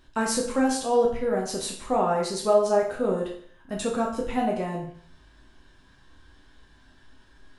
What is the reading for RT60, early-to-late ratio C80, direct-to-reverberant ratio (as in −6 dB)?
0.55 s, 10.0 dB, −2.5 dB